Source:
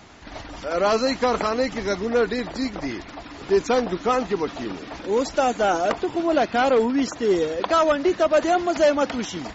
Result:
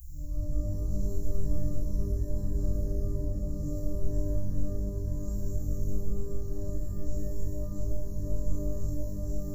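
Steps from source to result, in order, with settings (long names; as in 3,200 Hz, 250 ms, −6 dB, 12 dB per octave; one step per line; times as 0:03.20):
compressor on every frequency bin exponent 0.4
inverse Chebyshev band-stop filter 290–3,100 Hz, stop band 80 dB
reverb with rising layers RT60 1.2 s, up +12 semitones, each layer −2 dB, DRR −11.5 dB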